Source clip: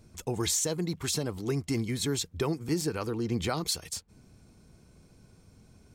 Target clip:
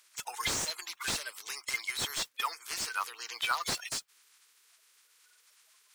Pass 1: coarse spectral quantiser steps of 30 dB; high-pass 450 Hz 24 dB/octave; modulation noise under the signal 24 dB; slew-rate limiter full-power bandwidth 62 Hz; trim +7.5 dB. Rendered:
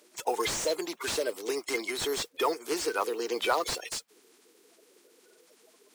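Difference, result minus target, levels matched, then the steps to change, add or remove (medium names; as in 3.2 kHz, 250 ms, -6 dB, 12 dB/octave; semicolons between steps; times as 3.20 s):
500 Hz band +16.0 dB
change: high-pass 1.1 kHz 24 dB/octave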